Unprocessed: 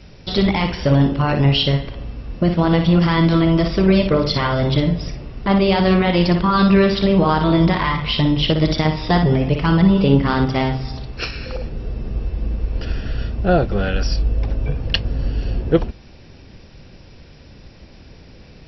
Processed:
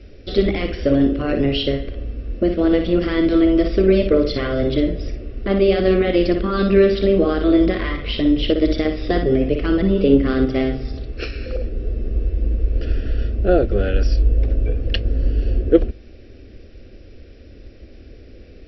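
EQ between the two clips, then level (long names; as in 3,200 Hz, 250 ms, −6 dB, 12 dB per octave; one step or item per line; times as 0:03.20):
low-pass filter 1,200 Hz 6 dB per octave
phaser with its sweep stopped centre 380 Hz, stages 4
+4.5 dB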